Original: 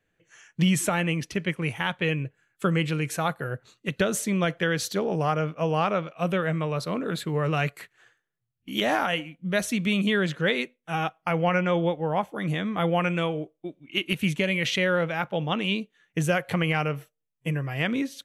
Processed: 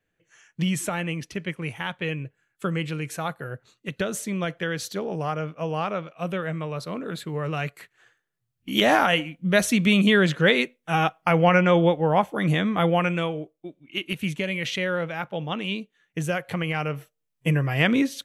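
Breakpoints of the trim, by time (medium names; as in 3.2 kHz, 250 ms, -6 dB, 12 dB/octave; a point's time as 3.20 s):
7.74 s -3 dB
8.74 s +5.5 dB
12.59 s +5.5 dB
13.56 s -2.5 dB
16.70 s -2.5 dB
17.52 s +6 dB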